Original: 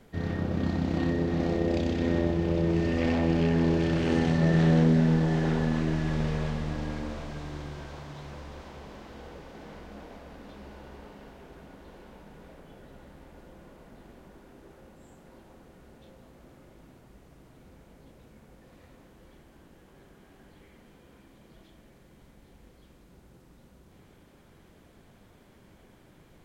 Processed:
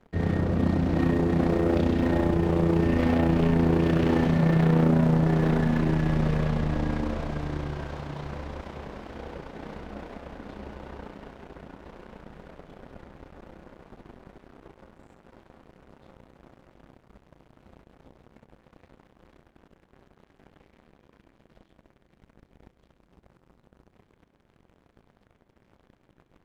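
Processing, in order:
low-pass filter 1,900 Hz 6 dB per octave
leveller curve on the samples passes 3
amplitude modulation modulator 30 Hz, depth 35%
level −2 dB

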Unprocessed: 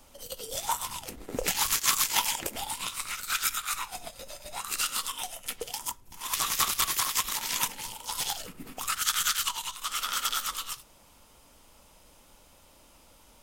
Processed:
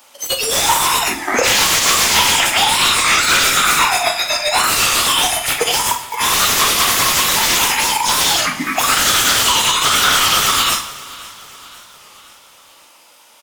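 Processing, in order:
0:01.20–0:03.61: meter weighting curve A
noise reduction from a noise print of the clip's start 22 dB
spectral tilt +2.5 dB per octave
mid-hump overdrive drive 35 dB, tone 2,500 Hz, clips at −8 dBFS
double-tracking delay 48 ms −13 dB
repeating echo 526 ms, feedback 55%, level −20 dB
convolution reverb RT60 0.90 s, pre-delay 6 ms, DRR 8.5 dB
wow of a warped record 33 1/3 rpm, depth 100 cents
level +6 dB

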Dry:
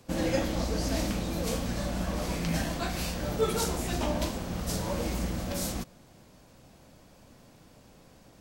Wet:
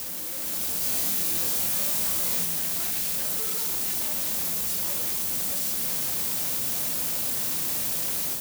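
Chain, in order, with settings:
sign of each sample alone
high-frequency loss of the air 78 metres
bit-depth reduction 6 bits, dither triangular
first-order pre-emphasis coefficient 0.8
0:00.79–0:02.45: flutter between parallel walls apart 4.1 metres, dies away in 0.34 s
automatic gain control gain up to 6 dB
high-pass filter 82 Hz 12 dB per octave
mains-hum notches 60/120 Hz

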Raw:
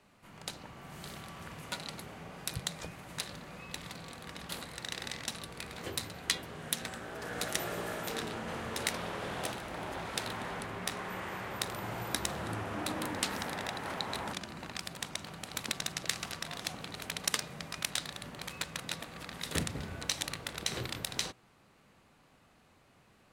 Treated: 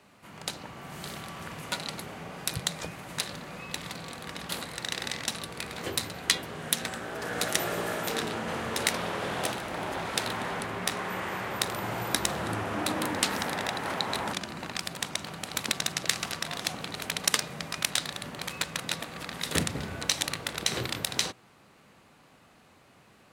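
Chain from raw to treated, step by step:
high-pass filter 99 Hz 6 dB per octave
level +6.5 dB

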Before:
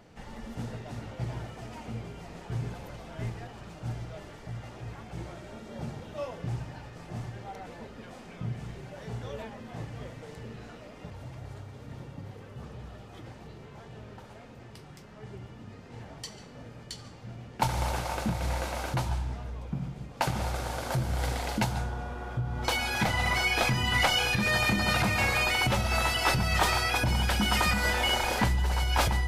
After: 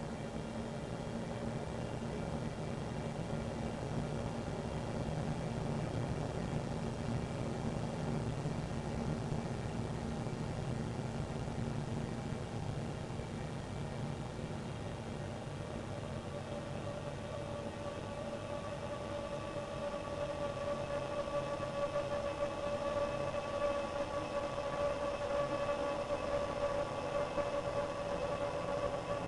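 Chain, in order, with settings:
amplitude modulation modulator 270 Hz, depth 35%
extreme stretch with random phases 49×, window 0.50 s, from 0:05.71
harmonic generator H 4 −14 dB, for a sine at −25.5 dBFS
background noise violet −60 dBFS
downsampling to 22,050 Hz
level +1 dB

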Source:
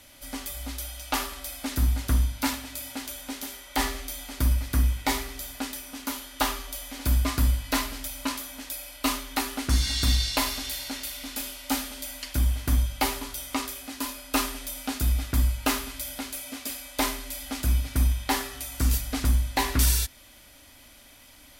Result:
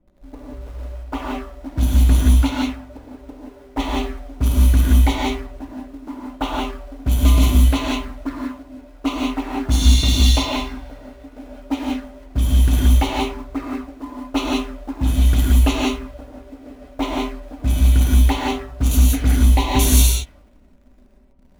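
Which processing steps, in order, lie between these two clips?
flanger swept by the level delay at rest 6.1 ms, full sweep at −23 dBFS
low-pass that shuts in the quiet parts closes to 320 Hz, open at −18.5 dBFS
in parallel at −10 dB: log-companded quantiser 4 bits
on the sum: reverb whose tail is shaped and stops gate 200 ms rising, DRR −3 dB
level +4 dB

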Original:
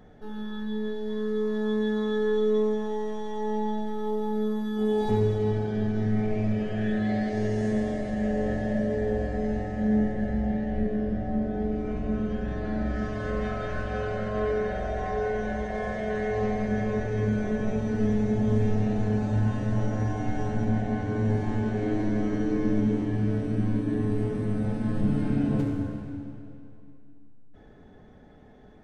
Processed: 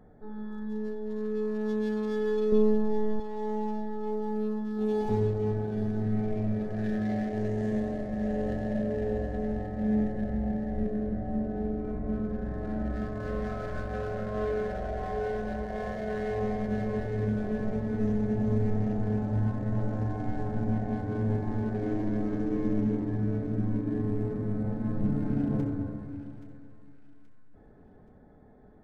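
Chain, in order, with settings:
adaptive Wiener filter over 15 samples
0:02.52–0:03.20: low-shelf EQ 270 Hz +12 dB
delay with a high-pass on its return 826 ms, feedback 44%, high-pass 1,600 Hz, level −10.5 dB
level −3 dB

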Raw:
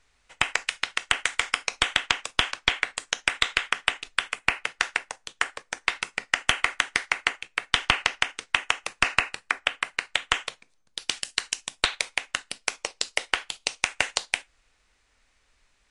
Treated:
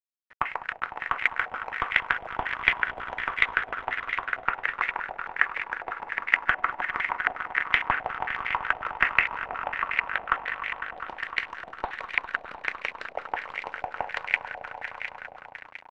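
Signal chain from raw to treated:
echo that builds up and dies away 101 ms, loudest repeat 5, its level −12.5 dB
bit reduction 7 bits
low-pass on a step sequencer 11 Hz 730–2,100 Hz
level −6 dB

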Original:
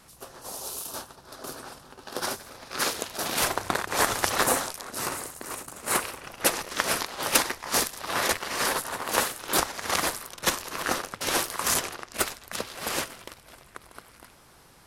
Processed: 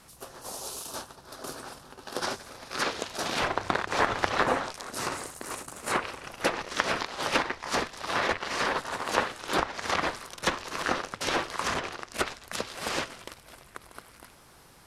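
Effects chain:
treble cut that deepens with the level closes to 2,700 Hz, closed at −21.5 dBFS

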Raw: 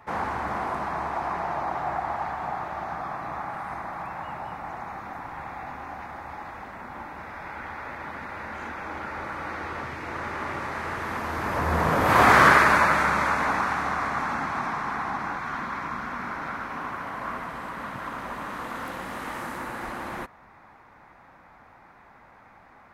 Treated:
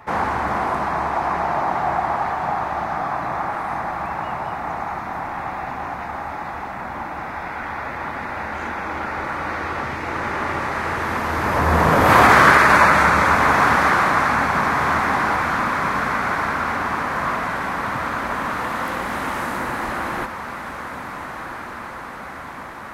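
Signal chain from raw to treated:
on a send: feedback delay with all-pass diffusion 1,428 ms, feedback 70%, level −10 dB
on the sum: boost into a limiter +8.5 dB
level −1 dB

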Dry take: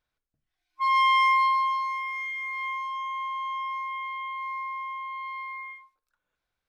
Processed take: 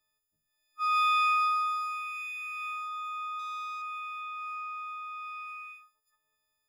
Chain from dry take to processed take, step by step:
every partial snapped to a pitch grid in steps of 6 semitones
0:03.39–0:03.82: power curve on the samples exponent 1.4
level −4.5 dB

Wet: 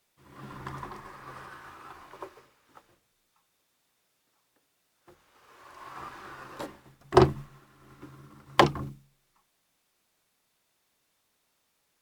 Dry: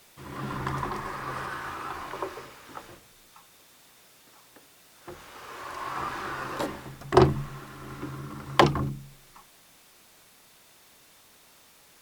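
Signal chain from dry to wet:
expander for the loud parts 1.5 to 1, over −49 dBFS

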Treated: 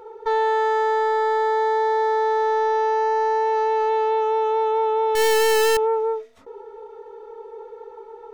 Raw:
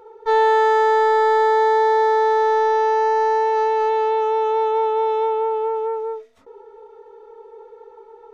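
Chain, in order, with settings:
0:05.15–0:05.77: sign of each sample alone
brickwall limiter −18 dBFS, peak gain reduction 8.5 dB
level +3.5 dB

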